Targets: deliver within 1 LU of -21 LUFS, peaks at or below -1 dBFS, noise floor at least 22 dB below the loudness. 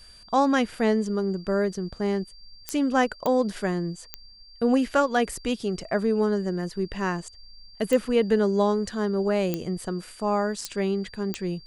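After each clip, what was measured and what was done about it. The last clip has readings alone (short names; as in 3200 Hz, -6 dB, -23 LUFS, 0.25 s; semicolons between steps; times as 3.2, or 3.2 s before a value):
clicks 7; steady tone 4700 Hz; tone level -49 dBFS; loudness -26.0 LUFS; peak -7.0 dBFS; loudness target -21.0 LUFS
-> de-click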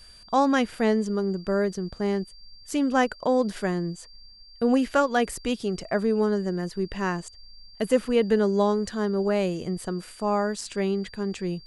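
clicks 0; steady tone 4700 Hz; tone level -49 dBFS
-> notch 4700 Hz, Q 30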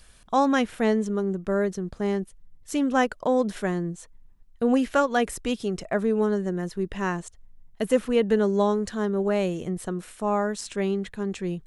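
steady tone none; loudness -26.0 LUFS; peak -8.5 dBFS; loudness target -21.0 LUFS
-> gain +5 dB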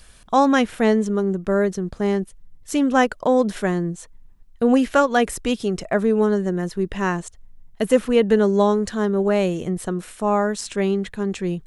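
loudness -21.0 LUFS; peak -3.5 dBFS; noise floor -48 dBFS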